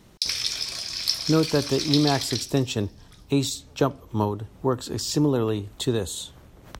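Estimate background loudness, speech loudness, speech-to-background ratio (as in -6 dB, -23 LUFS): -27.0 LUFS, -25.5 LUFS, 1.5 dB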